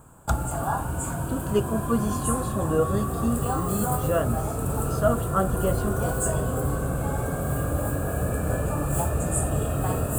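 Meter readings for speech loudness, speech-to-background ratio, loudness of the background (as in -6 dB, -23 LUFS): -28.5 LUFS, -1.0 dB, -27.5 LUFS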